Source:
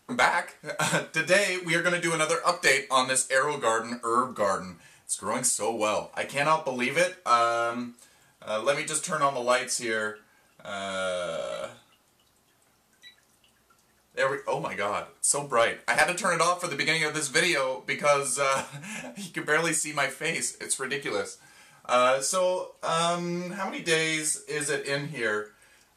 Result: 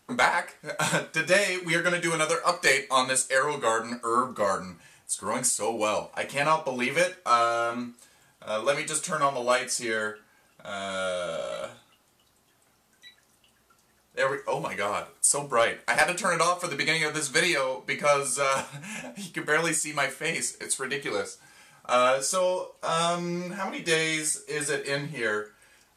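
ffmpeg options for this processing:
ffmpeg -i in.wav -filter_complex "[0:a]asettb=1/sr,asplit=3[link_01][link_02][link_03];[link_01]atrim=end=14.554[link_04];[link_02]atrim=start=14.55:end=15.28,asetpts=PTS-STARTPTS,afade=type=in:duration=0.004:curve=qsin,afade=type=out:start_time=0.726:duration=0.004:curve=qsin,highshelf=frequency=6400:gain=6.5[link_05];[link_03]atrim=start=15.276[link_06];[link_04][link_05]acrossfade=duration=0.004:curve1=hsin:curve2=qsin[link_07];[link_07][link_06]acrossfade=duration=0.004:curve1=qsin:curve2=hsin" out.wav

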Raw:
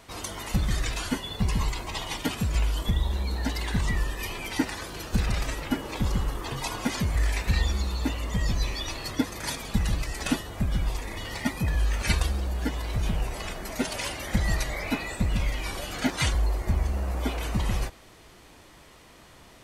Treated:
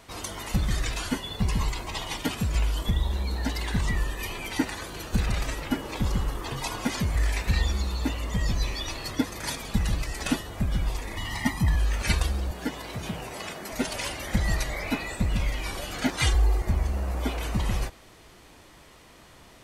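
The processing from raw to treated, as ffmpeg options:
ffmpeg -i in.wav -filter_complex "[0:a]asettb=1/sr,asplit=3[link_01][link_02][link_03];[link_01]atrim=end=3.924[link_04];[link_02]atrim=start=3.92:end=5.44,asetpts=PTS-STARTPTS,afade=type=in:duration=0.004:curve=qsin,afade=type=out:start_time=1.516:duration=0.004:curve=qsin,bandreject=frequency=5200:width=12[link_05];[link_03]atrim=start=5.436[link_06];[link_04][link_05]acrossfade=duration=0.004:curve1=hsin:curve2=qsin[link_07];[link_07][link_06]acrossfade=duration=0.004:curve1=qsin:curve2=hsin,asettb=1/sr,asplit=3[link_08][link_09][link_10];[link_08]atrim=end=11.174[link_11];[link_09]atrim=start=11.17:end=11.76,asetpts=PTS-STARTPTS,afade=type=in:duration=0.004:curve=qsin,afade=type=out:start_time=0.586:duration=0.004:curve=qsin,aecho=1:1:1:0.66,atrim=end_sample=26019[link_12];[link_10]atrim=start=11.756[link_13];[link_11][link_12]acrossfade=duration=0.004:curve1=hsin:curve2=qsin[link_14];[link_14][link_13]acrossfade=duration=0.004:curve1=qsin:curve2=hsin,asettb=1/sr,asplit=3[link_15][link_16][link_17];[link_15]atrim=end=12.514[link_18];[link_16]atrim=start=12.51:end=13.72,asetpts=PTS-STARTPTS,afade=type=in:duration=0.004:curve=qsin,afade=type=out:start_time=1.206:duration=0.004:curve=qsin,highpass=140[link_19];[link_17]atrim=start=13.716[link_20];[link_18][link_19]acrossfade=duration=0.004:curve1=hsin:curve2=qsin[link_21];[link_21][link_20]acrossfade=duration=0.004:curve1=qsin:curve2=hsin,asettb=1/sr,asplit=3[link_22][link_23][link_24];[link_22]atrim=end=16.224[link_25];[link_23]atrim=start=16.22:end=16.62,asetpts=PTS-STARTPTS,afade=type=in:duration=0.004:curve=qsin,afade=type=out:start_time=0.396:duration=0.004:curve=qsin,aecho=1:1:2.5:0.65,atrim=end_sample=17640[link_26];[link_24]atrim=start=16.616[link_27];[link_25][link_26]acrossfade=duration=0.004:curve1=hsin:curve2=qsin[link_28];[link_28][link_27]acrossfade=duration=0.004:curve1=qsin:curve2=hsin" out.wav

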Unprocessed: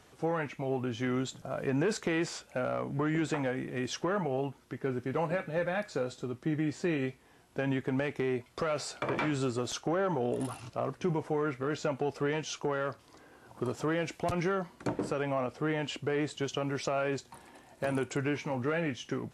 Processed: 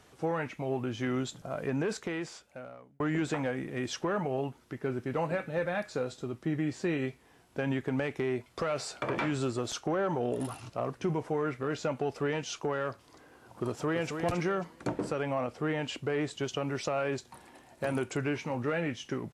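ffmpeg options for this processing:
ffmpeg -i in.wav -filter_complex "[0:a]asplit=2[link_01][link_02];[link_02]afade=type=in:start_time=13.68:duration=0.01,afade=type=out:start_time=14.15:duration=0.01,aecho=0:1:270|540|810:0.473151|0.118288|0.029572[link_03];[link_01][link_03]amix=inputs=2:normalize=0,asplit=2[link_04][link_05];[link_04]atrim=end=3,asetpts=PTS-STARTPTS,afade=type=out:start_time=1.51:duration=1.49[link_06];[link_05]atrim=start=3,asetpts=PTS-STARTPTS,afade=type=in:duration=0.004:curve=hsin[link_07];[link_06][link_07]concat=n=2:v=0:a=1" out.wav

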